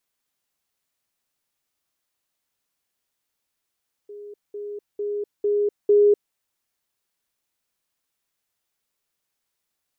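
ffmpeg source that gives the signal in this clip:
ffmpeg -f lavfi -i "aevalsrc='pow(10,(-36+6*floor(t/0.45))/20)*sin(2*PI*412*t)*clip(min(mod(t,0.45),0.25-mod(t,0.45))/0.005,0,1)':duration=2.25:sample_rate=44100" out.wav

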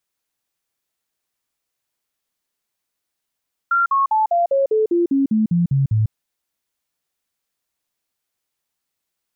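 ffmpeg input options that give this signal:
ffmpeg -f lavfi -i "aevalsrc='0.211*clip(min(mod(t,0.2),0.15-mod(t,0.2))/0.005,0,1)*sin(2*PI*1380*pow(2,-floor(t/0.2)/3)*mod(t,0.2))':duration=2.4:sample_rate=44100" out.wav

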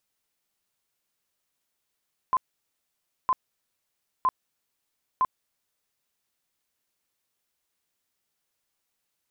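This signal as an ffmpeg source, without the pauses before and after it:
ffmpeg -f lavfi -i "aevalsrc='0.119*sin(2*PI*1030*mod(t,0.96))*lt(mod(t,0.96),40/1030)':duration=3.84:sample_rate=44100" out.wav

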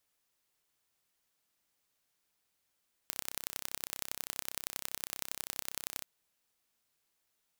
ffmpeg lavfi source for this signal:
ffmpeg -f lavfi -i "aevalsrc='0.422*eq(mod(n,1357),0)*(0.5+0.5*eq(mod(n,4071),0))':duration=2.94:sample_rate=44100" out.wav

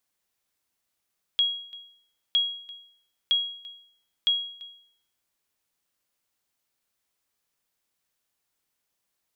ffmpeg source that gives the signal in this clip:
ffmpeg -f lavfi -i "aevalsrc='0.158*(sin(2*PI*3300*mod(t,0.96))*exp(-6.91*mod(t,0.96)/0.61)+0.0841*sin(2*PI*3300*max(mod(t,0.96)-0.34,0))*exp(-6.91*max(mod(t,0.96)-0.34,0)/0.61))':duration=3.84:sample_rate=44100" out.wav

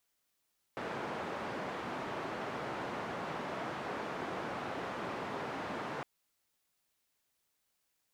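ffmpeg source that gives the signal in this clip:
ffmpeg -f lavfi -i "anoisesrc=color=white:duration=5.26:sample_rate=44100:seed=1,highpass=frequency=140,lowpass=frequency=1100,volume=-21.6dB" out.wav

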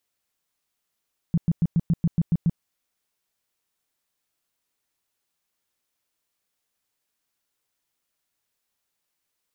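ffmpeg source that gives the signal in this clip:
ffmpeg -f lavfi -i "aevalsrc='0.158*sin(2*PI*167*mod(t,0.14))*lt(mod(t,0.14),6/167)':duration=1.26:sample_rate=44100" out.wav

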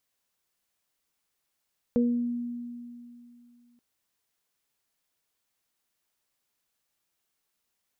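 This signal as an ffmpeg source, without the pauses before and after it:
ffmpeg -f lavfi -i "aevalsrc='0.1*pow(10,-3*t/2.71)*sin(2*PI*240*t)+0.0708*pow(10,-3*t/0.45)*sin(2*PI*480*t)':duration=1.83:sample_rate=44100" out.wav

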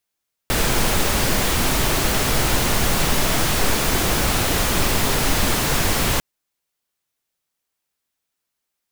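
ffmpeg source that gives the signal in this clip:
ffmpeg -f lavfi -i "anoisesrc=color=pink:amplitude=0.61:duration=5.7:sample_rate=44100:seed=1" out.wav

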